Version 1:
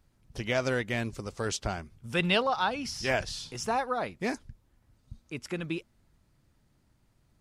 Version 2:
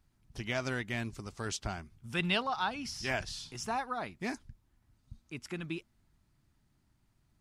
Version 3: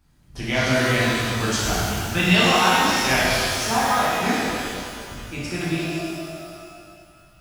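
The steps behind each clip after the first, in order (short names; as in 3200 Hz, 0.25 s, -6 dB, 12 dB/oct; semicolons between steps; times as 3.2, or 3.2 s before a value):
bell 510 Hz -9 dB 0.47 oct; gain -4 dB
shimmer reverb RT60 2.3 s, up +12 st, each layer -8 dB, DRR -9 dB; gain +6 dB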